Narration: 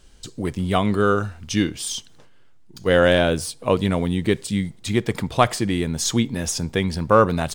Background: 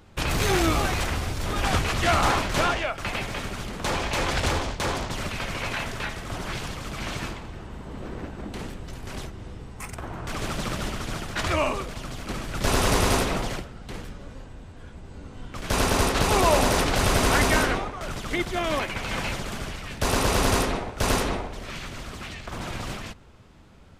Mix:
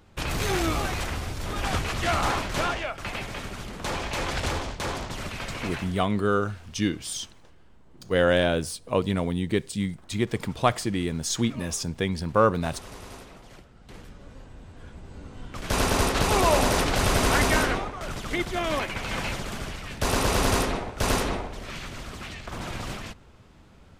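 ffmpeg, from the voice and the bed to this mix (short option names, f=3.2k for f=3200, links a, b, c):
-filter_complex "[0:a]adelay=5250,volume=-5dB[a];[1:a]volume=16.5dB,afade=t=out:st=5.62:d=0.45:silence=0.133352,afade=t=in:st=13.44:d=1.44:silence=0.1[b];[a][b]amix=inputs=2:normalize=0"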